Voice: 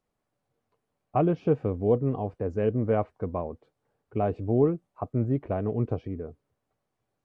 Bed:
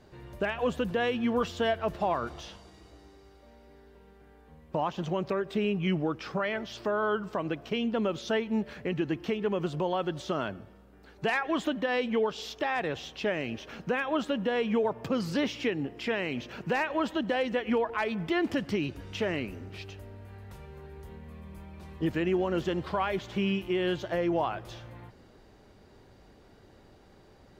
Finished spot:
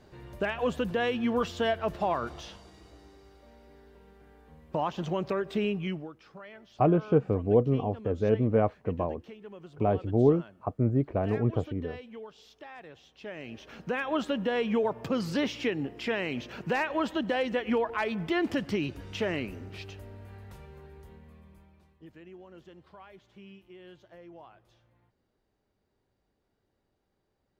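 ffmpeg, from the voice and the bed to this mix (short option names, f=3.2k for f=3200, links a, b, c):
-filter_complex "[0:a]adelay=5650,volume=0.5dB[a];[1:a]volume=16.5dB,afade=t=out:st=5.64:d=0.48:silence=0.149624,afade=t=in:st=13.14:d=1.04:silence=0.149624,afade=t=out:st=20.29:d=1.67:silence=0.0841395[b];[a][b]amix=inputs=2:normalize=0"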